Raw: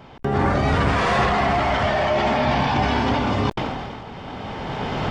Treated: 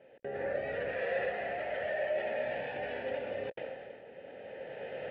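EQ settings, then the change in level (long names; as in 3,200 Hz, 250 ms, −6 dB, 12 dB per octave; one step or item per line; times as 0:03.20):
dynamic equaliser 280 Hz, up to −6 dB, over −36 dBFS, Q 1.2
formant filter e
high-frequency loss of the air 330 metres
0.0 dB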